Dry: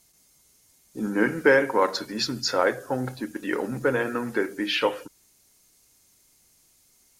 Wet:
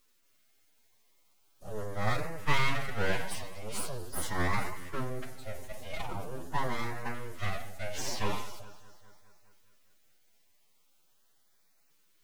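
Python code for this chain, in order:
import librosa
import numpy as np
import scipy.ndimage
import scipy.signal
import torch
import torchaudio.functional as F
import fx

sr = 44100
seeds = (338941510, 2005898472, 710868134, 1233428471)

p1 = np.abs(x)
p2 = p1 + fx.echo_heads(p1, sr, ms=121, heads='first and second', feedback_pct=49, wet_db=-22.5, dry=0)
p3 = fx.stretch_vocoder(p2, sr, factor=1.7)
p4 = fx.filter_lfo_notch(p3, sr, shape='saw_up', hz=0.42, low_hz=680.0, high_hz=3500.0, q=2.8)
p5 = fx.sustainer(p4, sr, db_per_s=46.0)
y = p5 * librosa.db_to_amplitude(-6.0)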